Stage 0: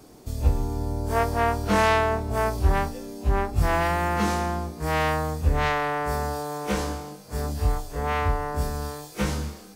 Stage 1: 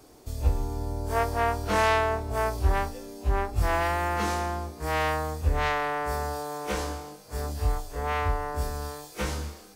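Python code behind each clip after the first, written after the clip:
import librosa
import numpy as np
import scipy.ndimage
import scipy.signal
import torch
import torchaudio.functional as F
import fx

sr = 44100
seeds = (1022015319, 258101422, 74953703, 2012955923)

y = fx.peak_eq(x, sr, hz=180.0, db=-8.5, octaves=1.0)
y = y * 10.0 ** (-2.0 / 20.0)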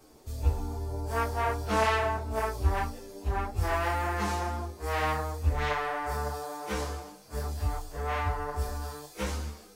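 y = fx.ensemble(x, sr)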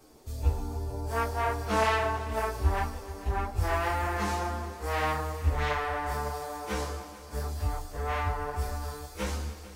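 y = fx.echo_heads(x, sr, ms=147, heads='all three', feedback_pct=46, wet_db=-19.5)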